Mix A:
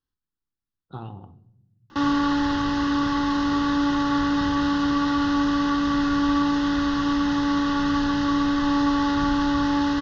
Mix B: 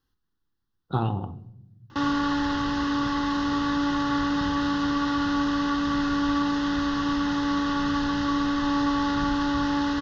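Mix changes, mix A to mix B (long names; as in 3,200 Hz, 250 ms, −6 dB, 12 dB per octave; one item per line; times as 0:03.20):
speech +11.0 dB
background: send −8.5 dB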